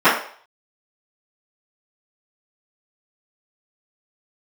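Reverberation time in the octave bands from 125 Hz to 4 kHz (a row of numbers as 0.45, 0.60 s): 0.30, 0.35, 0.50, 0.50, 0.50, 0.50 s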